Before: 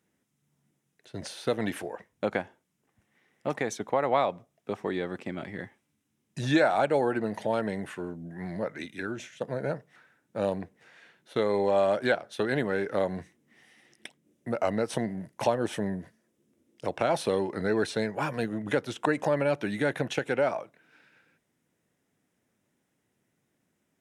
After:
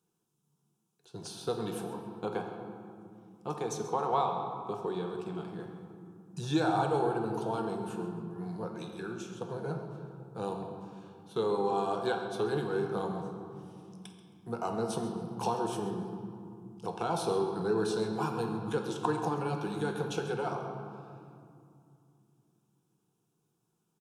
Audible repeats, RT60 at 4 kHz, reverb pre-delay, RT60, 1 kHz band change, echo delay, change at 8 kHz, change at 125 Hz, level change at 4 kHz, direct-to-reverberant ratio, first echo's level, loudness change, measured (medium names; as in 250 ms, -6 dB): 1, 1.4 s, 4 ms, 2.6 s, -1.0 dB, 134 ms, -2.0 dB, -1.5 dB, -4.0 dB, 2.5 dB, -14.5 dB, -4.5 dB